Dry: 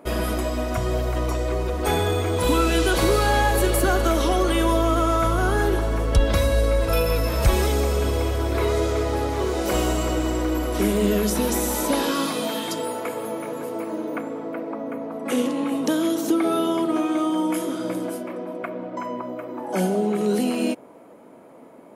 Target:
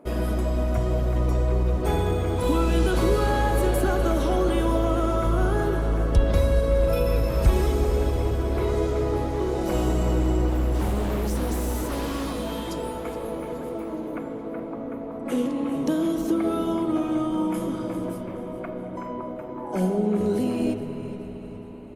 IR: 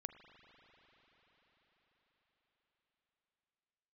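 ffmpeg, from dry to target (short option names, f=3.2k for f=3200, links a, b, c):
-filter_complex "[0:a]asettb=1/sr,asplit=3[a][b][c];[a]atrim=end=10.484[d];[b]atrim=start=10.48:end=12.48,asetpts=PTS-STARTPTS,afade=t=in:d=0.004:c=qsin,afade=t=out:st=1.996:d=0.004:c=qsin,aeval=exprs='0.0944*(abs(mod(val(0)/0.0944+3,4)-2)-1)':c=same[e];[c]atrim=start=12.476[f];[d][e]acrossfade=d=0.004:c1=hsin:c2=qsin[g];[g][f]acrossfade=d=0.004:c1=qsin:c2=hsin,tiltshelf=f=750:g=4.5,asplit=5[h][i][j][k][l];[i]adelay=420,afreqshift=-100,volume=-14.5dB[m];[j]adelay=840,afreqshift=-200,volume=-20.9dB[n];[k]adelay=1260,afreqshift=-300,volume=-27.3dB[o];[l]adelay=1680,afreqshift=-400,volume=-33.6dB[p];[h][m][n][o][p]amix=inputs=5:normalize=0[q];[1:a]atrim=start_sample=2205[r];[q][r]afir=irnorm=-1:irlink=0" -ar 48000 -c:a libopus -b:a 48k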